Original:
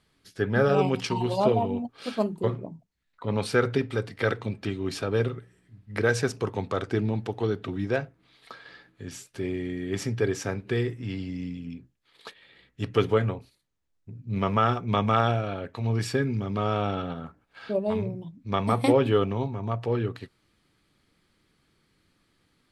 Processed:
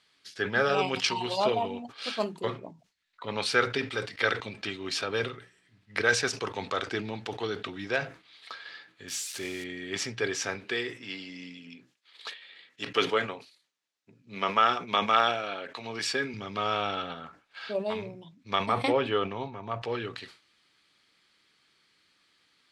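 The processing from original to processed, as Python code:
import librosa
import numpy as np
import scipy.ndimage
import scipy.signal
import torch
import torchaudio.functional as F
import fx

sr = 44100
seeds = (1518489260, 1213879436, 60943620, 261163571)

y = fx.crossing_spikes(x, sr, level_db=-32.5, at=(9.08, 9.64))
y = fx.highpass(y, sr, hz=190.0, slope=12, at=(10.64, 16.34))
y = fx.high_shelf(y, sr, hz=3800.0, db=-11.5, at=(18.66, 19.82))
y = scipy.signal.sosfilt(scipy.signal.butter(2, 4400.0, 'lowpass', fs=sr, output='sos'), y)
y = fx.tilt_eq(y, sr, slope=4.5)
y = fx.sustainer(y, sr, db_per_s=150.0)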